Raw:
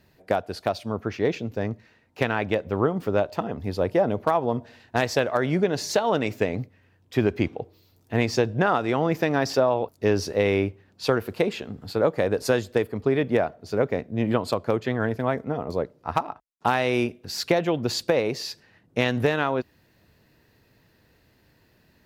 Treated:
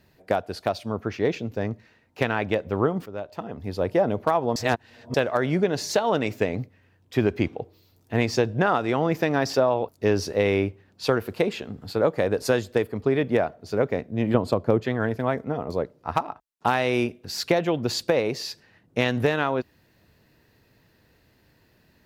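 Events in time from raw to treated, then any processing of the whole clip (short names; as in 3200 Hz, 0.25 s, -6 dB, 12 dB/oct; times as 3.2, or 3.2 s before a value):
3.06–3.95 fade in, from -15.5 dB
4.56–5.14 reverse
14.34–14.83 tilt shelf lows +5.5 dB, about 840 Hz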